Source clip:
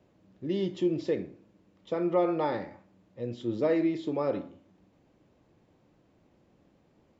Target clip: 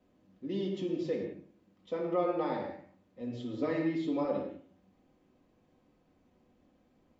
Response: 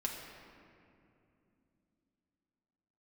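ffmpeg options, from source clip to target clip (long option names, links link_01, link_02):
-filter_complex "[0:a]asettb=1/sr,asplit=3[link_01][link_02][link_03];[link_01]atrim=end=3.204[link_04];[link_02]atrim=start=3.2:end=4.25,asetpts=PTS-STARTPTS,afade=type=in:duration=0.004:curve=qsin,afade=type=out:start_time=1.046:duration=0.004:curve=qsin,aecho=1:1:7.1:0.72,atrim=end_sample=46305[link_05];[link_03]atrim=start=4.246[link_06];[link_04][link_05]acrossfade=duration=0.004:curve1=hsin:curve2=qsin[link_07];[link_07][link_06]acrossfade=duration=0.004:curve1=qsin:curve2=hsin[link_08];[1:a]atrim=start_sample=2205,afade=type=out:start_time=0.28:duration=0.01,atrim=end_sample=12789,asetrate=52920,aresample=44100[link_09];[link_08][link_09]afir=irnorm=-1:irlink=0,volume=-3.5dB"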